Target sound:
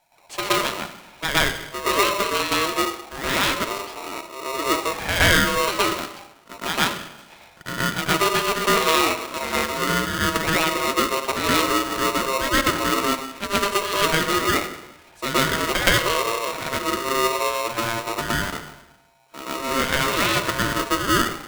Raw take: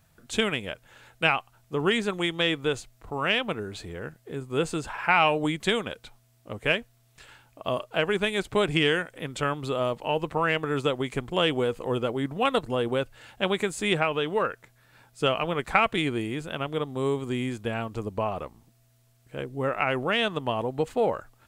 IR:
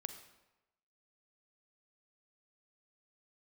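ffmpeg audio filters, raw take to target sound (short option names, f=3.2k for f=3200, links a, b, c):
-filter_complex "[0:a]asplit=2[a][b];[1:a]atrim=start_sample=2205,lowpass=3.1k,adelay=120[c];[b][c]afir=irnorm=-1:irlink=0,volume=10.5dB[d];[a][d]amix=inputs=2:normalize=0,aeval=exprs='val(0)*sgn(sin(2*PI*800*n/s))':c=same,volume=-3.5dB"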